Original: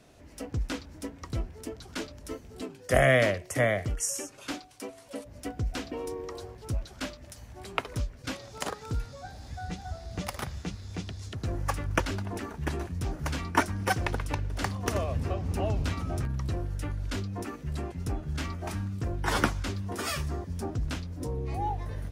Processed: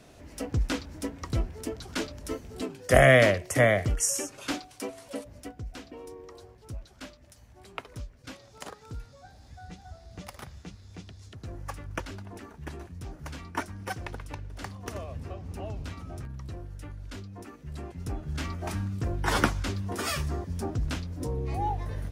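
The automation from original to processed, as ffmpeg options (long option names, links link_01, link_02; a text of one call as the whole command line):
ffmpeg -i in.wav -af "volume=13.5dB,afade=type=out:start_time=5.04:duration=0.51:silence=0.251189,afade=type=in:start_time=17.55:duration=1.14:silence=0.334965" out.wav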